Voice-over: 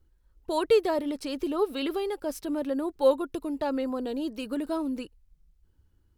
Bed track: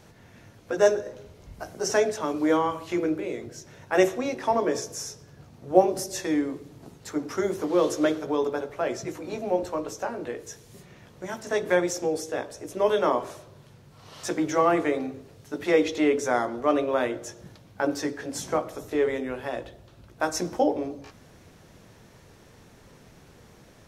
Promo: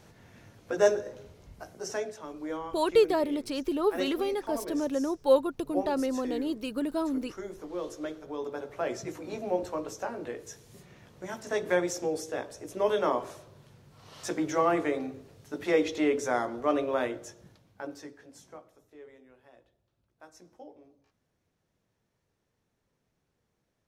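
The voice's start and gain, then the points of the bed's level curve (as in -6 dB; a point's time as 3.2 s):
2.25 s, 0.0 dB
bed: 1.27 s -3 dB
2.22 s -13.5 dB
8.2 s -13.5 dB
8.79 s -4 dB
17.04 s -4 dB
18.92 s -26 dB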